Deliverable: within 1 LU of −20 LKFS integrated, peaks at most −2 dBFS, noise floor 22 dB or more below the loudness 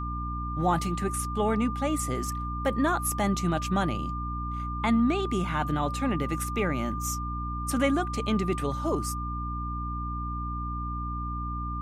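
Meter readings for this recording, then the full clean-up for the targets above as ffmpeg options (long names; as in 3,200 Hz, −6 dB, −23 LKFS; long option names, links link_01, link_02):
mains hum 60 Hz; hum harmonics up to 300 Hz; level of the hum −31 dBFS; interfering tone 1,200 Hz; level of the tone −34 dBFS; integrated loudness −29.0 LKFS; sample peak −13.5 dBFS; target loudness −20.0 LKFS
→ -af "bandreject=frequency=60:width_type=h:width=4,bandreject=frequency=120:width_type=h:width=4,bandreject=frequency=180:width_type=h:width=4,bandreject=frequency=240:width_type=h:width=4,bandreject=frequency=300:width_type=h:width=4"
-af "bandreject=frequency=1200:width=30"
-af "volume=9dB"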